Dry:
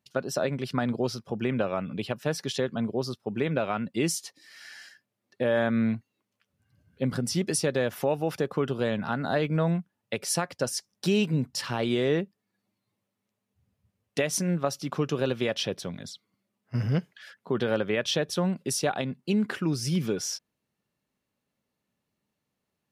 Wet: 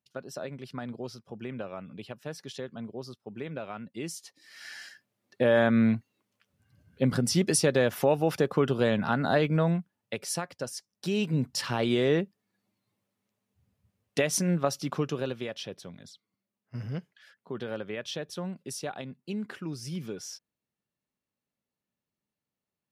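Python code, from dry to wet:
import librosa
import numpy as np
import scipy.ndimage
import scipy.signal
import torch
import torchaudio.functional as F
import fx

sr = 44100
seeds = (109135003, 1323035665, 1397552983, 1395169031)

y = fx.gain(x, sr, db=fx.line((4.13, -10.0), (4.68, 2.5), (9.28, 2.5), (10.91, -8.5), (11.45, 0.5), (14.85, 0.5), (15.53, -9.0)))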